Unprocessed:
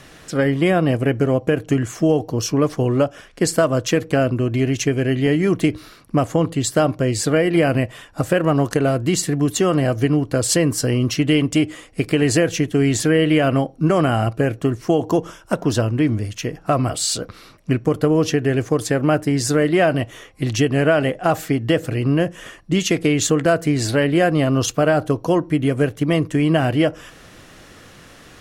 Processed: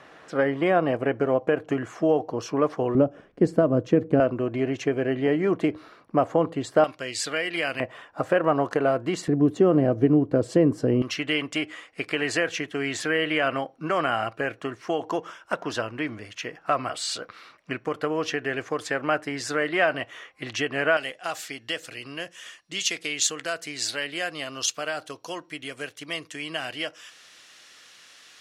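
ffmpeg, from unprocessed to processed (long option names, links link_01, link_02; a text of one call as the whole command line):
ffmpeg -i in.wav -af "asetnsamples=nb_out_samples=441:pad=0,asendcmd='2.95 bandpass f 290;4.2 bandpass f 760;6.84 bandpass f 3000;7.8 bandpass f 920;9.28 bandpass f 360;11.02 bandpass f 1700;20.97 bandpass f 4500',bandpass=frequency=890:width_type=q:width=0.79:csg=0" out.wav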